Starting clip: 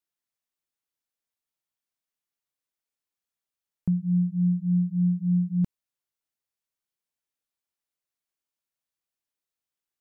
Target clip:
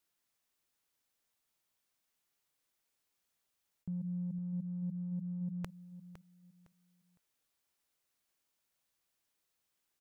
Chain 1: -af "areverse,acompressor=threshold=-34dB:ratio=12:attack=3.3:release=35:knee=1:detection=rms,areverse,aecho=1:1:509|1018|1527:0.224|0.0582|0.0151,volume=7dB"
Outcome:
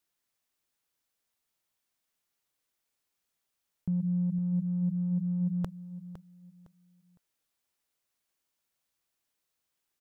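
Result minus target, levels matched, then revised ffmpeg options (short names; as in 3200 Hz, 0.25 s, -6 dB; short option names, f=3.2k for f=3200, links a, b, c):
compressor: peak gain reduction -9 dB
-af "areverse,acompressor=threshold=-44dB:ratio=12:attack=3.3:release=35:knee=1:detection=rms,areverse,aecho=1:1:509|1018|1527:0.224|0.0582|0.0151,volume=7dB"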